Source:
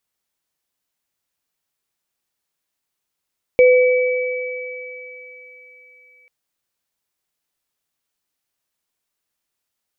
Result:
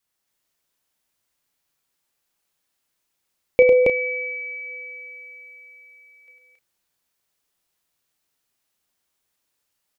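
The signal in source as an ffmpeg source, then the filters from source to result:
-f lavfi -i "aevalsrc='0.473*pow(10,-3*t/2.82)*sin(2*PI*502*t)+0.133*pow(10,-3*t/4.92)*sin(2*PI*2290*t)':d=2.69:s=44100"
-filter_complex "[0:a]adynamicequalizer=threshold=0.0562:dfrequency=510:dqfactor=2.4:tfrequency=510:tqfactor=2.4:attack=5:release=100:ratio=0.375:range=2:mode=cutabove:tftype=bell,asplit=2[a][b];[b]adelay=33,volume=-9.5dB[c];[a][c]amix=inputs=2:normalize=0,aecho=1:1:102|274.1:0.562|0.891"

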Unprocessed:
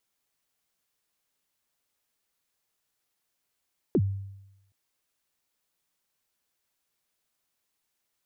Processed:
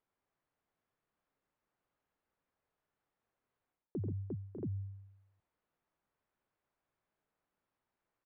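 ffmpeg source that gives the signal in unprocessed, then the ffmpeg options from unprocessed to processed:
-f lavfi -i "aevalsrc='0.133*pow(10,-3*t/0.91)*sin(2*PI*(450*0.055/log(98/450)*(exp(log(98/450)*min(t,0.055)/0.055)-1)+98*max(t-0.055,0)))':d=0.77:s=44100"
-af "lowpass=1.4k,aecho=1:1:88|134|352|599|634|679:0.422|0.188|0.2|0.141|0.168|0.447,areverse,acompressor=threshold=-36dB:ratio=12,areverse"

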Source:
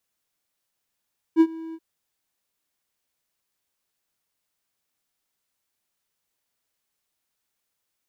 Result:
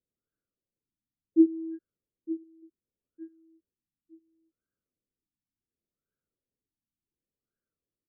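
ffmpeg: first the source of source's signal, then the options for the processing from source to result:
-f lavfi -i "aevalsrc='0.398*(1-4*abs(mod(325*t+0.25,1)-0.5))':d=0.43:s=44100,afade=t=in:d=0.046,afade=t=out:st=0.046:d=0.058:silence=0.075,afade=t=out:st=0.38:d=0.05"
-filter_complex "[0:a]asuperstop=centerf=890:order=4:qfactor=0.81,asplit=2[a][b];[b]adelay=910,lowpass=f=2k:p=1,volume=-14dB,asplit=2[c][d];[d]adelay=910,lowpass=f=2k:p=1,volume=0.29,asplit=2[e][f];[f]adelay=910,lowpass=f=2k:p=1,volume=0.29[g];[a][c][e][g]amix=inputs=4:normalize=0,afftfilt=real='re*lt(b*sr/1024,320*pow(1700/320,0.5+0.5*sin(2*PI*0.69*pts/sr)))':imag='im*lt(b*sr/1024,320*pow(1700/320,0.5+0.5*sin(2*PI*0.69*pts/sr)))':win_size=1024:overlap=0.75"

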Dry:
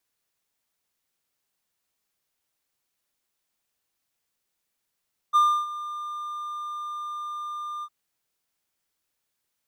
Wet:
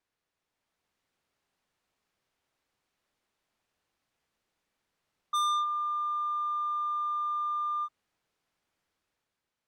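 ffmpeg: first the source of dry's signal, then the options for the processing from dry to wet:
-f lavfi -i "aevalsrc='0.237*(1-4*abs(mod(1200*t+0.25,1)-0.5))':d=2.556:s=44100,afade=t=in:d=0.028,afade=t=out:st=0.028:d=0.302:silence=0.15,afade=t=out:st=2.5:d=0.056"
-af "aemphasis=mode=reproduction:type=75fm,dynaudnorm=f=150:g=9:m=5dB,asoftclip=type=tanh:threshold=-26.5dB"

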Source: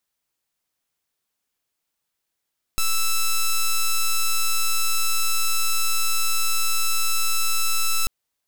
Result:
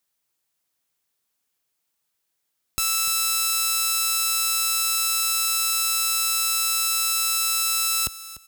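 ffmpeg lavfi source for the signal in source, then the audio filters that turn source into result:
-f lavfi -i "aevalsrc='0.112*(2*lt(mod(1320*t,1),0.06)-1)':d=5.29:s=44100"
-af "highpass=49,highshelf=f=5.9k:g=4.5,aecho=1:1:296|592:0.158|0.0349"

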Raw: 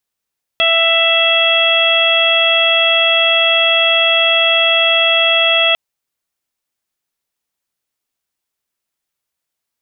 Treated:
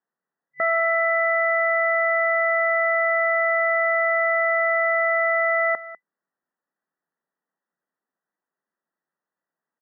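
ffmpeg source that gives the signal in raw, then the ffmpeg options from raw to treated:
-f lavfi -i "aevalsrc='0.141*sin(2*PI*663*t)+0.0891*sin(2*PI*1326*t)+0.0841*sin(2*PI*1989*t)+0.188*sin(2*PI*2652*t)+0.224*sin(2*PI*3315*t)':d=5.15:s=44100"
-filter_complex "[0:a]acrossover=split=1200[a][b];[a]asoftclip=type=tanh:threshold=-24dB[c];[c][b]amix=inputs=2:normalize=0,afftfilt=real='re*between(b*sr/4096,150,2000)':imag='im*between(b*sr/4096,150,2000)':win_size=4096:overlap=0.75,aecho=1:1:198:0.15"

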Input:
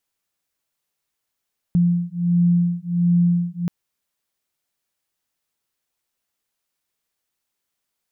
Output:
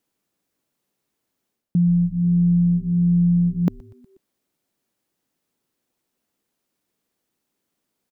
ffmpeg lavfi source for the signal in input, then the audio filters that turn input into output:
-f lavfi -i "aevalsrc='0.119*(sin(2*PI*173*t)+sin(2*PI*174.4*t))':d=1.93:s=44100"
-filter_complex "[0:a]equalizer=f=260:t=o:w=2.4:g=14.5,areverse,acompressor=threshold=-18dB:ratio=4,areverse,asplit=5[a][b][c][d][e];[b]adelay=121,afreqshift=-140,volume=-23dB[f];[c]adelay=242,afreqshift=-280,volume=-27.6dB[g];[d]adelay=363,afreqshift=-420,volume=-32.2dB[h];[e]adelay=484,afreqshift=-560,volume=-36.7dB[i];[a][f][g][h][i]amix=inputs=5:normalize=0"

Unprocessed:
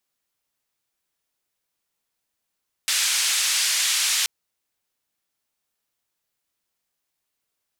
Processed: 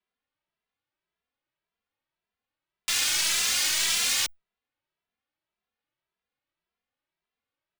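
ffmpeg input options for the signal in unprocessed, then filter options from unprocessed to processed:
-f lavfi -i "anoisesrc=c=white:d=1.38:r=44100:seed=1,highpass=f=2000,lowpass=f=8000,volume=-11.6dB"
-filter_complex "[0:a]equalizer=f=14k:w=2.2:g=-14.5,acrossover=split=180|3900[a][b][c];[c]acrusher=bits=5:dc=4:mix=0:aa=0.000001[d];[a][b][d]amix=inputs=3:normalize=0,asplit=2[e][f];[f]adelay=2.6,afreqshift=1.8[g];[e][g]amix=inputs=2:normalize=1"

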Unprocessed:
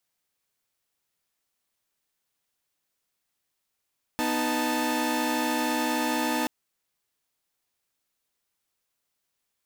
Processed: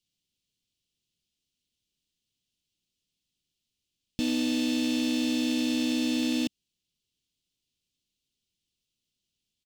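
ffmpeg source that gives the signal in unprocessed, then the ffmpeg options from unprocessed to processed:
-f lavfi -i "aevalsrc='0.0473*((2*mod(246.94*t,1)-1)+(2*mod(311.13*t,1)-1)+(2*mod(880*t,1)-1))':d=2.28:s=44100"
-filter_complex "[0:a]firequalizer=gain_entry='entry(210,0);entry(1000,-30);entry(2900,4);entry(12000,-12)':delay=0.05:min_phase=1,asplit=2[a][b];[b]adynamicsmooth=sensitivity=3:basefreq=740,volume=-1dB[c];[a][c]amix=inputs=2:normalize=0"

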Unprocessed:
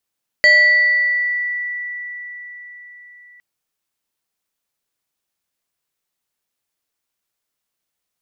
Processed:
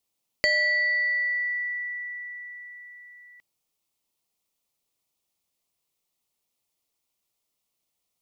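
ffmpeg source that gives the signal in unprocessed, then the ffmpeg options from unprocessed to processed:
-f lavfi -i "aevalsrc='0.473*pow(10,-3*t/4.79)*sin(2*PI*1960*t+0.54*pow(10,-3*t/2.05)*sin(2*PI*1.31*1960*t))':d=2.96:s=44100"
-af "equalizer=f=1.6k:t=o:w=0.43:g=-14,acompressor=threshold=-24dB:ratio=2.5"

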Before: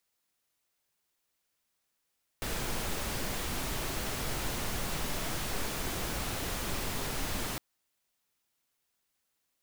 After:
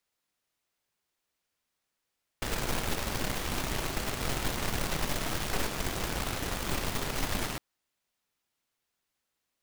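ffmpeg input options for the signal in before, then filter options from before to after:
-f lavfi -i "anoisesrc=c=pink:a=0.102:d=5.16:r=44100:seed=1"
-filter_complex "[0:a]highshelf=f=6.9k:g=-7,asplit=2[a][b];[b]acrusher=bits=4:mix=0:aa=0.000001,volume=-5dB[c];[a][c]amix=inputs=2:normalize=0"

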